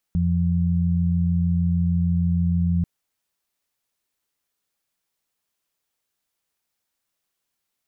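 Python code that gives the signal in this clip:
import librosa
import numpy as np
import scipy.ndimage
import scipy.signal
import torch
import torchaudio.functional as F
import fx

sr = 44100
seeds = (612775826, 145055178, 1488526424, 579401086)

y = fx.additive_steady(sr, length_s=2.69, hz=86.5, level_db=-21, upper_db=(1,))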